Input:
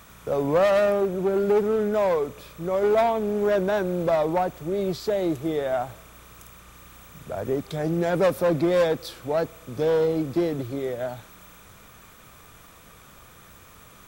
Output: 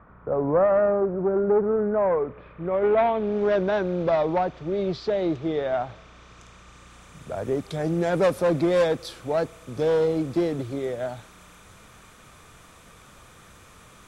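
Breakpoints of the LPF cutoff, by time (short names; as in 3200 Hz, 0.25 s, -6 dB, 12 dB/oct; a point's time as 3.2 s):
LPF 24 dB/oct
1.81 s 1500 Hz
3 s 3000 Hz
3.4 s 5000 Hz
5.85 s 5000 Hz
7.43 s 11000 Hz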